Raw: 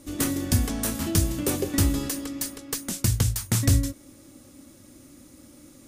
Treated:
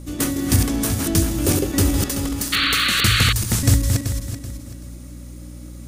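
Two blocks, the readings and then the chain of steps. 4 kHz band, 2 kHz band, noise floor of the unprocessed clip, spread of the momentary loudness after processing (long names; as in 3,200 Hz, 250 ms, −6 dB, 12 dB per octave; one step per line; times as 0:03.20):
+14.0 dB, +15.0 dB, −51 dBFS, 22 LU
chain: feedback delay that plays each chunk backwards 191 ms, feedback 55%, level −4 dB
mains hum 60 Hz, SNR 15 dB
sound drawn into the spectrogram noise, 0:02.52–0:03.33, 1,100–4,600 Hz −23 dBFS
level +3.5 dB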